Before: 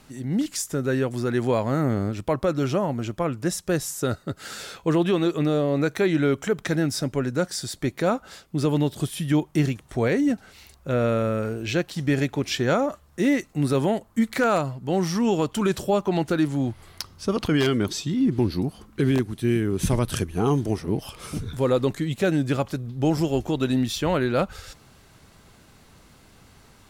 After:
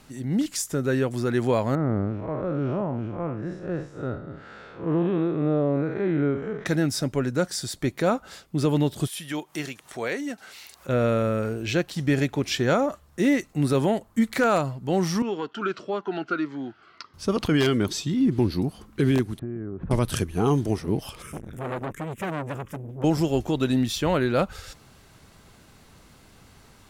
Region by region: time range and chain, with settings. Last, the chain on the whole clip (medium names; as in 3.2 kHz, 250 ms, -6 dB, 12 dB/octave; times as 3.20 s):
1.75–6.66 s: spectral blur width 136 ms + low-pass 1.6 kHz
9.07–10.89 s: high-pass 910 Hz 6 dB/octave + upward compressor, threshold -36 dBFS
15.22–17.14 s: cabinet simulation 370–4100 Hz, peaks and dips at 540 Hz -9 dB, 850 Hz -5 dB, 1.4 kHz +10 dB, 2.4 kHz -3 dB, 3.7 kHz -7 dB + Shepard-style phaser falling 1.7 Hz
19.39–19.91 s: low-pass 1.4 kHz 24 dB/octave + compression, threshold -29 dBFS
21.22–23.04 s: static phaser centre 1.8 kHz, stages 4 + transformer saturation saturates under 1.2 kHz
whole clip: none